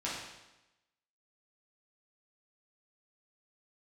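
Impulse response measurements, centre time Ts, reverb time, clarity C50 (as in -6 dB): 64 ms, 1.0 s, 0.5 dB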